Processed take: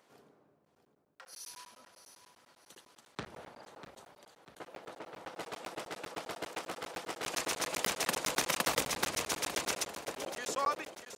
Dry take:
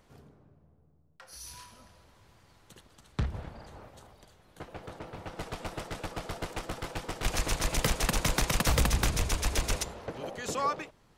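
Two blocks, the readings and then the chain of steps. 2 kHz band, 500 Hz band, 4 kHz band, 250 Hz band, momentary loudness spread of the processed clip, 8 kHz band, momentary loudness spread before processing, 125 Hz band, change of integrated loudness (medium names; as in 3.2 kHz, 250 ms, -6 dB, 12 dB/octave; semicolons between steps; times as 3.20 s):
-1.5 dB, -2.5 dB, -1.5 dB, -7.5 dB, 20 LU, -1.5 dB, 18 LU, -19.0 dB, -3.5 dB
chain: high-pass 320 Hz 12 dB/octave; on a send: feedback delay 645 ms, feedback 45%, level -11 dB; on the sum: crackling interface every 0.10 s, samples 512, zero, from 0.65 s; trim -1.5 dB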